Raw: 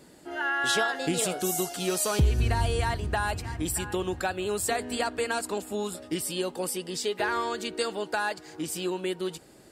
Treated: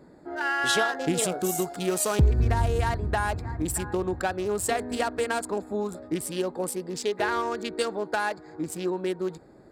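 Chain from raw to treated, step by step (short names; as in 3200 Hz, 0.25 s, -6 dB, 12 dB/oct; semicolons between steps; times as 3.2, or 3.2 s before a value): Wiener smoothing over 15 samples; gain +2.5 dB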